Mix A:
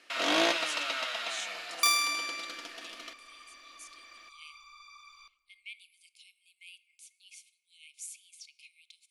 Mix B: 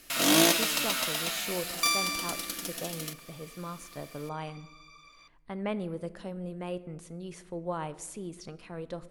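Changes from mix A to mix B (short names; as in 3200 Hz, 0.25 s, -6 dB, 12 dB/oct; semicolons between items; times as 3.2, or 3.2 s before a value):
speech: remove brick-wall FIR high-pass 2100 Hz; first sound: remove BPF 480–3500 Hz; second sound: send -10.0 dB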